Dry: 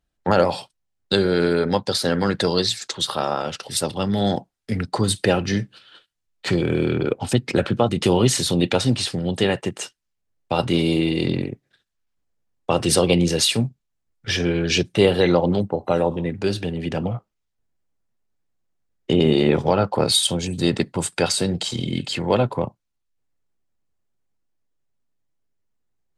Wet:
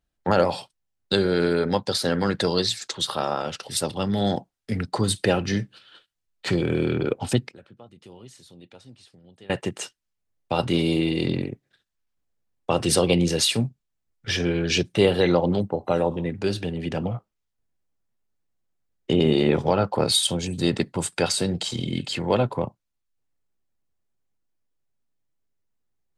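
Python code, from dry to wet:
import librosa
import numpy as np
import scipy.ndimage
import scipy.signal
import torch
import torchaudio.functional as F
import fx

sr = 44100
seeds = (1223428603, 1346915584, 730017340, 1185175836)

y = fx.gate_flip(x, sr, shuts_db=-18.0, range_db=-26, at=(7.48, 9.5))
y = F.gain(torch.from_numpy(y), -2.5).numpy()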